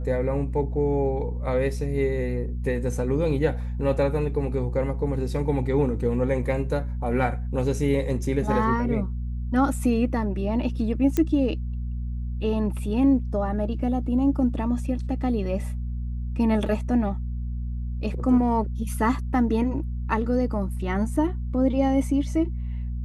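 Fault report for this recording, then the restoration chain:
mains hum 60 Hz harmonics 4 −29 dBFS
0:11.17: click −11 dBFS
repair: click removal
hum removal 60 Hz, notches 4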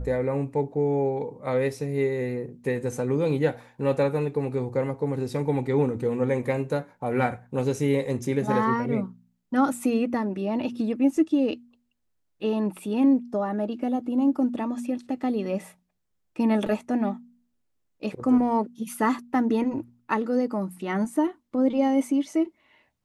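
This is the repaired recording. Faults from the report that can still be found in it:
none of them is left

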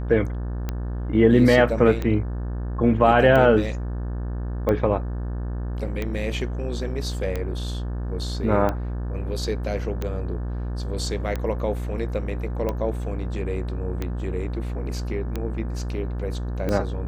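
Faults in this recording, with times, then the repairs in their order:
mains buzz 60 Hz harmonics 30 −28 dBFS
scratch tick 45 rpm −14 dBFS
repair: click removal
hum removal 60 Hz, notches 30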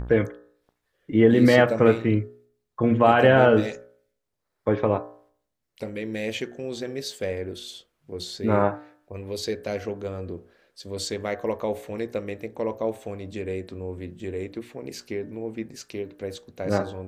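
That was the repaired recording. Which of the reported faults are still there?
none of them is left

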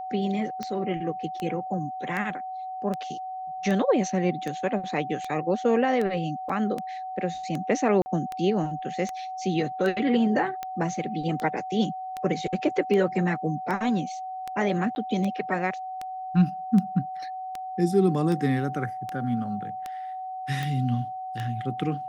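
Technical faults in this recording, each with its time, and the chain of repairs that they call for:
scratch tick 78 rpm −18 dBFS
whistle 750 Hz −32 dBFS
0:06.49–0:06.50: drop-out 5.1 ms
0:08.02–0:08.06: drop-out 40 ms
0:14.95–0:14.96: drop-out 11 ms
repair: click removal
notch filter 750 Hz, Q 30
repair the gap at 0:06.49, 5.1 ms
repair the gap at 0:08.02, 40 ms
repair the gap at 0:14.95, 11 ms

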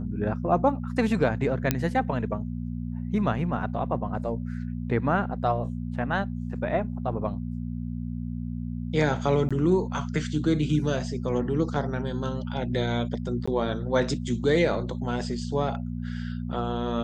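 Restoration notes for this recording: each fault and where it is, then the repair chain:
mains hum 60 Hz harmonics 4 −32 dBFS
0:01.71: click −7 dBFS
0:09.49–0:09.51: drop-out 16 ms
0:13.46–0:13.47: drop-out 15 ms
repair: click removal
hum removal 60 Hz, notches 4
repair the gap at 0:09.49, 16 ms
repair the gap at 0:13.46, 15 ms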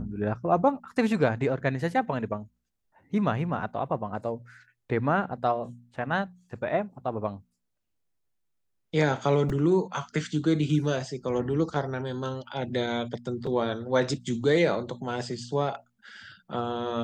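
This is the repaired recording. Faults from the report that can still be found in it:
0:01.71: click

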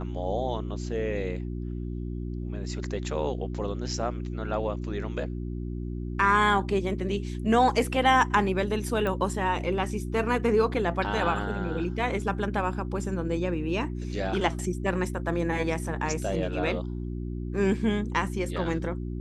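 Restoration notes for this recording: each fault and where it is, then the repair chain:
mains hum 60 Hz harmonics 6 −33 dBFS
0:09.07: click −18 dBFS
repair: click removal
hum removal 60 Hz, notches 6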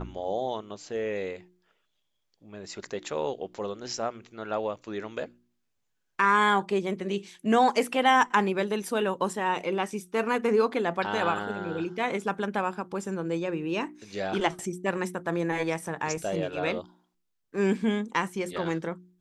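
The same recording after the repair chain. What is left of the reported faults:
none of them is left

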